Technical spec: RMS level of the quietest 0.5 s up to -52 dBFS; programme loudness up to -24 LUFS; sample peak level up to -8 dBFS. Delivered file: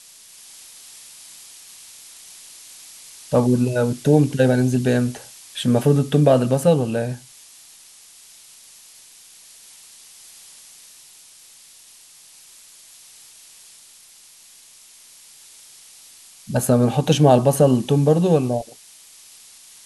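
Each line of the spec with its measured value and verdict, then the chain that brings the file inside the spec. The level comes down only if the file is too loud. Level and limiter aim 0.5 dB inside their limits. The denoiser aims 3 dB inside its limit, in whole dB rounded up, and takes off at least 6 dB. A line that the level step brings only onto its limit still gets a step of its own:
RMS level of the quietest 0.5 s -48 dBFS: fail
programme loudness -18.0 LUFS: fail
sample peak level -2.0 dBFS: fail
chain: gain -6.5 dB

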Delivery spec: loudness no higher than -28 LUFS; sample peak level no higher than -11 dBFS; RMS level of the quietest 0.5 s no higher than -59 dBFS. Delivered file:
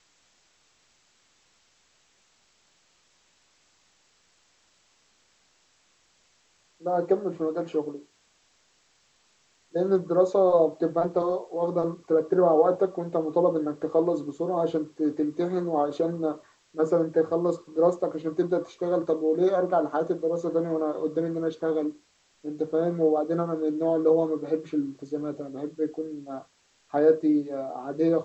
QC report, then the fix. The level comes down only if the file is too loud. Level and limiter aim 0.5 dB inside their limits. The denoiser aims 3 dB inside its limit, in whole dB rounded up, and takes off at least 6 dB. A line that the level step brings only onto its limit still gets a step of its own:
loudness -26.0 LUFS: fail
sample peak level -9.0 dBFS: fail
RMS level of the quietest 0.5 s -65 dBFS: OK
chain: gain -2.5 dB

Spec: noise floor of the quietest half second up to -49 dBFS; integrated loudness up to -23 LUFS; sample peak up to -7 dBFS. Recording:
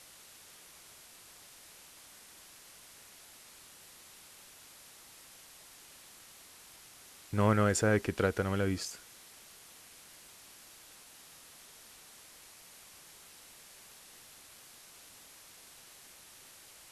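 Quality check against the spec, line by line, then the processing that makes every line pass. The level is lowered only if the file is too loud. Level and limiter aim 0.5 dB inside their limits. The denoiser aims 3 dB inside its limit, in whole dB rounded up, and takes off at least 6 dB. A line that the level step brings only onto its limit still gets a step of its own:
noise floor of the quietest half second -55 dBFS: OK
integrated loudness -30.5 LUFS: OK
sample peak -14.0 dBFS: OK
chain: none

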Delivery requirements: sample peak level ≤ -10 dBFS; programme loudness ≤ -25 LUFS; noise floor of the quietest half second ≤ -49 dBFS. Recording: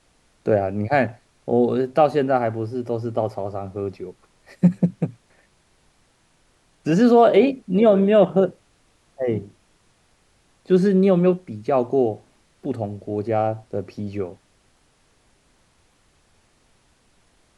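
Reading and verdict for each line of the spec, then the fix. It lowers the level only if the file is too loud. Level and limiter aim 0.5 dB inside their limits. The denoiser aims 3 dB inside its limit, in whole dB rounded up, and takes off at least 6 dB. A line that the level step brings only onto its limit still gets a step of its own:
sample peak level -4.5 dBFS: fail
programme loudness -20.5 LUFS: fail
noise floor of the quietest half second -61 dBFS: OK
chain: gain -5 dB; limiter -10.5 dBFS

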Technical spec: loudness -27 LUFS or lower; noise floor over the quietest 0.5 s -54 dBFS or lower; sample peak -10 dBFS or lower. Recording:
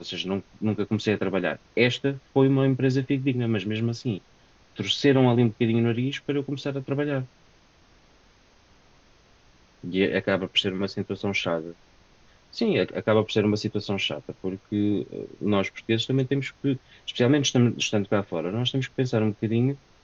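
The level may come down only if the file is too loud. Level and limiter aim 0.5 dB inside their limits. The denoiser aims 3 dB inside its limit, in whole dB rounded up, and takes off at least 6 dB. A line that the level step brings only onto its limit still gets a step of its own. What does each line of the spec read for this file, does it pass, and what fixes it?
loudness -25.5 LUFS: fail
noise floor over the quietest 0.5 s -58 dBFS: OK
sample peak -7.0 dBFS: fail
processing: gain -2 dB; limiter -10.5 dBFS

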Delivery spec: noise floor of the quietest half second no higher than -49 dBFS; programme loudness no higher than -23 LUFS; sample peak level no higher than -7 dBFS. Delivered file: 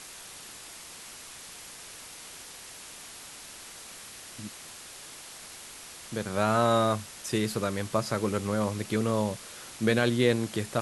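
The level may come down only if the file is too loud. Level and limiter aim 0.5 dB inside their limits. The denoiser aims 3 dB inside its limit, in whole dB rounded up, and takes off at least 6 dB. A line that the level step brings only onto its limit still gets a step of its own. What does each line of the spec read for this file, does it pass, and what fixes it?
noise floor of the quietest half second -46 dBFS: fail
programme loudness -28.5 LUFS: OK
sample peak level -8.5 dBFS: OK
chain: denoiser 6 dB, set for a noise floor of -46 dBFS

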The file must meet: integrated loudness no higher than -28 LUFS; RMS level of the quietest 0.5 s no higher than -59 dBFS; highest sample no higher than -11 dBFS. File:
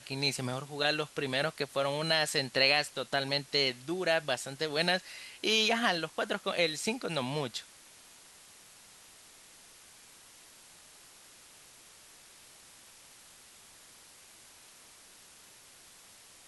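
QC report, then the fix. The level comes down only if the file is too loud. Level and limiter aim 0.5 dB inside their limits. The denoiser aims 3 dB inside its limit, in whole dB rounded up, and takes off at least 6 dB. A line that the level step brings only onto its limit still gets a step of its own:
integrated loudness -30.5 LUFS: OK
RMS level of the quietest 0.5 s -56 dBFS: fail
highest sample -12.0 dBFS: OK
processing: denoiser 6 dB, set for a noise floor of -56 dBFS

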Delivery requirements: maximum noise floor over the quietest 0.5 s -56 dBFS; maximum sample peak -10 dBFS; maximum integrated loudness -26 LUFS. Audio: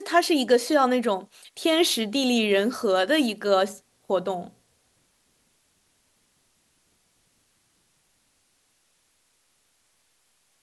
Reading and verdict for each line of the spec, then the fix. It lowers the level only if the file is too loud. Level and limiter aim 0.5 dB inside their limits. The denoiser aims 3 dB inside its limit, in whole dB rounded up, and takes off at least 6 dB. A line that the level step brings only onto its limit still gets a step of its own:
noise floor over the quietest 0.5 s -68 dBFS: OK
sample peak -7.5 dBFS: fail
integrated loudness -23.0 LUFS: fail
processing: gain -3.5 dB

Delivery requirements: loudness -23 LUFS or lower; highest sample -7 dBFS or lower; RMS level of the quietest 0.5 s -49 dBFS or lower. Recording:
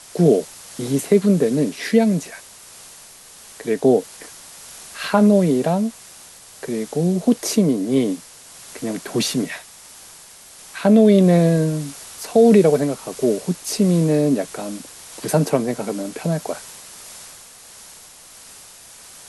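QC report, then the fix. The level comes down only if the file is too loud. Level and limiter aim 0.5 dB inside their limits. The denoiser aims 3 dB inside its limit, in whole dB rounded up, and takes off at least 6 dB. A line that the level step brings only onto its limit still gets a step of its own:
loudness -18.5 LUFS: fail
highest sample -3.5 dBFS: fail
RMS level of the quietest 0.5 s -44 dBFS: fail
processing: denoiser 6 dB, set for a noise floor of -44 dBFS; gain -5 dB

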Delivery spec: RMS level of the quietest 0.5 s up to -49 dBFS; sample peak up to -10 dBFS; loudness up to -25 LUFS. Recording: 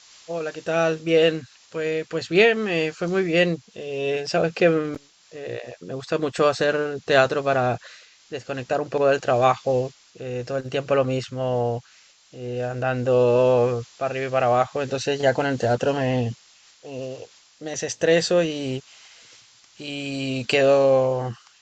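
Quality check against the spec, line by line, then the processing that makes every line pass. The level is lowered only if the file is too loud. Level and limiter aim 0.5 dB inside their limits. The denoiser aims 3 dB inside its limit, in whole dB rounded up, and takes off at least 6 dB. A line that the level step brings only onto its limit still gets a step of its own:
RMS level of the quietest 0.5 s -54 dBFS: OK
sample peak -3.5 dBFS: fail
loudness -22.5 LUFS: fail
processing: gain -3 dB; limiter -10.5 dBFS

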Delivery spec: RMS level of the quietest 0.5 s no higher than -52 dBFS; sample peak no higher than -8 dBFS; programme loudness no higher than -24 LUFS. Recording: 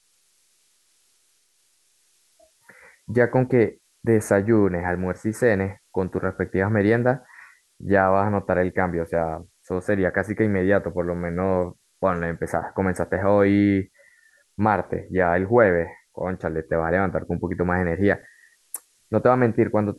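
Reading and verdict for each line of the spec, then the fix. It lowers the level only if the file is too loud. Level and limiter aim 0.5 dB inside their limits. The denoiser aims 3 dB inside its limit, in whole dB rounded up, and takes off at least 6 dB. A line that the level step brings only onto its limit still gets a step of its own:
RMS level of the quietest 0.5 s -64 dBFS: OK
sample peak -3.5 dBFS: fail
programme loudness -22.5 LUFS: fail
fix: gain -2 dB; limiter -8.5 dBFS

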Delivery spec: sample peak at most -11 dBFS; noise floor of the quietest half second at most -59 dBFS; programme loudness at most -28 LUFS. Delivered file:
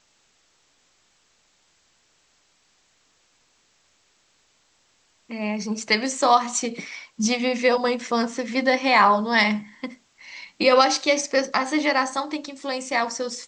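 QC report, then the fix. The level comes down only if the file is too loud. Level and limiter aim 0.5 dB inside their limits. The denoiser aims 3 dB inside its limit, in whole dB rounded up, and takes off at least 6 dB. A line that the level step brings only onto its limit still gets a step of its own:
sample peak -5.0 dBFS: fail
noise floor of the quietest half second -64 dBFS: OK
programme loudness -21.5 LUFS: fail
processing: gain -7 dB

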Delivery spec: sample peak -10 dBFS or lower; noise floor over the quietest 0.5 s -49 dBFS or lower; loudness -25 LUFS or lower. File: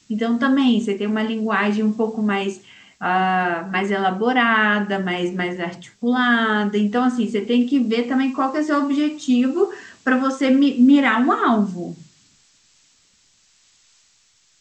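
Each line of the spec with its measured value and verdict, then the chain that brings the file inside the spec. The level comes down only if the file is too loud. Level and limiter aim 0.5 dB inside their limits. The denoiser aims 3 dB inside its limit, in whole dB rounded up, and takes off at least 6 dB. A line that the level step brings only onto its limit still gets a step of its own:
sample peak -5.5 dBFS: fail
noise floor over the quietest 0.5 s -59 dBFS: OK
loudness -19.5 LUFS: fail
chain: gain -6 dB

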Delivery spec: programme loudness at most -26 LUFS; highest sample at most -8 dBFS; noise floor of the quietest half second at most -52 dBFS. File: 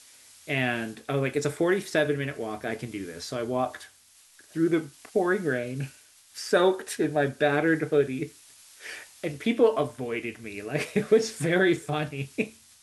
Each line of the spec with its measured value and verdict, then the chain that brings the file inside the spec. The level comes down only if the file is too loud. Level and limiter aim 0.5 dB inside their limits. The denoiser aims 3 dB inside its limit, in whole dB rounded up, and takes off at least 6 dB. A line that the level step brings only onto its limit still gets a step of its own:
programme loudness -27.0 LUFS: OK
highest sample -9.5 dBFS: OK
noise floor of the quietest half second -57 dBFS: OK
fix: none

